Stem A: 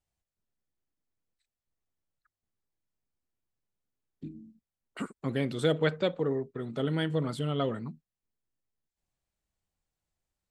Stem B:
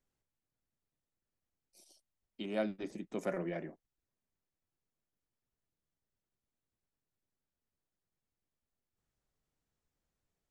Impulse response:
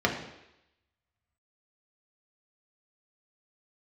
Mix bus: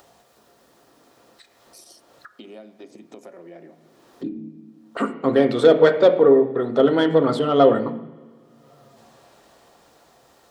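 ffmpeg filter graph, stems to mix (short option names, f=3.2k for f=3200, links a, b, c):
-filter_complex "[0:a]dynaudnorm=f=340:g=9:m=12.5dB,asplit=2[a][b];[b]highpass=f=720:p=1,volume=15dB,asoftclip=type=tanh:threshold=-2.5dB[c];[a][c]amix=inputs=2:normalize=0,lowpass=f=1k:p=1,volume=-6dB,volume=-1dB,asplit=2[d][e];[e]volume=-15dB[f];[1:a]acompressor=threshold=-45dB:ratio=6,volume=-5.5dB,asplit=2[g][h];[h]volume=-20.5dB[i];[2:a]atrim=start_sample=2205[j];[f][i]amix=inputs=2:normalize=0[k];[k][j]afir=irnorm=-1:irlink=0[l];[d][g][l]amix=inputs=3:normalize=0,highpass=f=270:p=1,equalizer=f=1.6k:w=3.7:g=-5.5,acompressor=mode=upward:threshold=-30dB:ratio=2.5"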